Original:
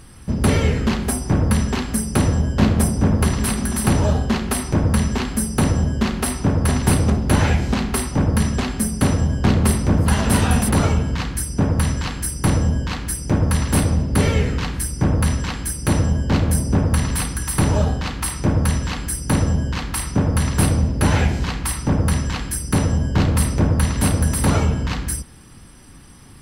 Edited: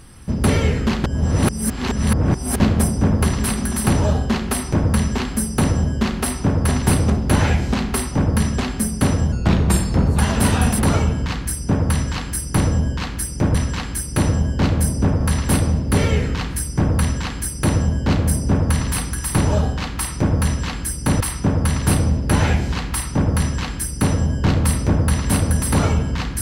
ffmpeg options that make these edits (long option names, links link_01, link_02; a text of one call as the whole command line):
ffmpeg -i in.wav -filter_complex "[0:a]asplit=8[link_01][link_02][link_03][link_04][link_05][link_06][link_07][link_08];[link_01]atrim=end=1.042[link_09];[link_02]atrim=start=1.038:end=2.602,asetpts=PTS-STARTPTS,areverse[link_10];[link_03]atrim=start=2.598:end=9.324[link_11];[link_04]atrim=start=9.32:end=10.09,asetpts=PTS-STARTPTS,asetrate=38808,aresample=44100[link_12];[link_05]atrim=start=10.086:end=13.442[link_13];[link_06]atrim=start=15.248:end=16.912[link_14];[link_07]atrim=start=13.438:end=19.442[link_15];[link_08]atrim=start=19.918[link_16];[link_09][link_10]acrossfade=duration=0.004:curve1=hsin:curve2=hsin[link_17];[link_17][link_11]acrossfade=duration=0.004:curve1=hsin:curve2=hsin[link_18];[link_18][link_12]acrossfade=duration=0.004:curve1=hsin:curve2=hsin[link_19];[link_19][link_13]acrossfade=duration=0.004:curve1=hsin:curve2=hsin[link_20];[link_20][link_14]acrossfade=duration=0.004:curve1=hsin:curve2=hsin[link_21];[link_21][link_15]acrossfade=duration=0.004:curve1=hsin:curve2=hsin[link_22];[link_22][link_16]acrossfade=duration=0.004:curve1=hsin:curve2=hsin" out.wav